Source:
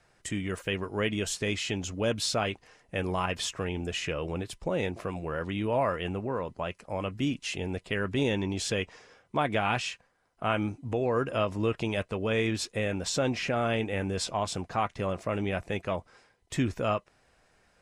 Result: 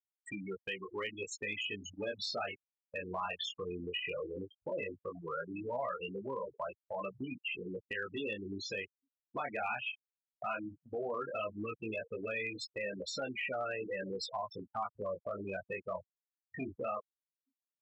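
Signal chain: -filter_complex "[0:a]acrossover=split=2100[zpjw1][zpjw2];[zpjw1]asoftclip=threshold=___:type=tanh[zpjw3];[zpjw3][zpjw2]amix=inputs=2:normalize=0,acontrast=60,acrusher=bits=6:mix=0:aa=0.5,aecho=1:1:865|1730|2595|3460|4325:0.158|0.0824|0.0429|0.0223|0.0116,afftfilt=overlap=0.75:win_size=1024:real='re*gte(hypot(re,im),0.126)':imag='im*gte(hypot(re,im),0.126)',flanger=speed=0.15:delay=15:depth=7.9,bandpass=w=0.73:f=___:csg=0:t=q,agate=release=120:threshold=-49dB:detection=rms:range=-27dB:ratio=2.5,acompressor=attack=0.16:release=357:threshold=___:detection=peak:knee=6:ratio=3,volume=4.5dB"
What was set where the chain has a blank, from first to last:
-26.5dB, 1.7k, -37dB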